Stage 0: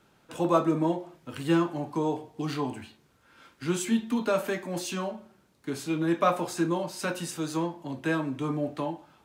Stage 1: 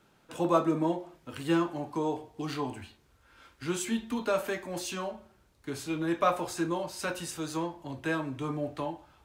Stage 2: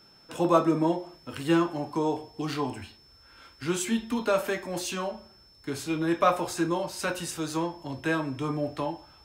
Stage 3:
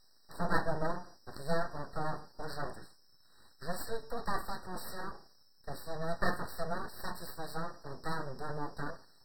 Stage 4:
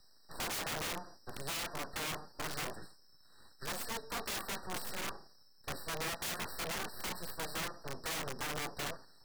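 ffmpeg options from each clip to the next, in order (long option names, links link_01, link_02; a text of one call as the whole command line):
ffmpeg -i in.wav -af "asubboost=boost=11.5:cutoff=55,volume=-1.5dB" out.wav
ffmpeg -i in.wav -af "aeval=exprs='val(0)+0.00112*sin(2*PI*5300*n/s)':channel_layout=same,volume=3.5dB" out.wav
ffmpeg -i in.wav -af "aeval=exprs='abs(val(0))':channel_layout=same,afftfilt=real='re*eq(mod(floor(b*sr/1024/1900),2),0)':imag='im*eq(mod(floor(b*sr/1024/1900),2),0)':win_size=1024:overlap=0.75,volume=-5.5dB" out.wav
ffmpeg -i in.wav -filter_complex "[0:a]acrossover=split=180|1500|3500[link_01][link_02][link_03][link_04];[link_01]acompressor=threshold=-40dB:ratio=16[link_05];[link_05][link_02][link_03][link_04]amix=inputs=4:normalize=0,aeval=exprs='(mod(50.1*val(0)+1,2)-1)/50.1':channel_layout=same,volume=1dB" out.wav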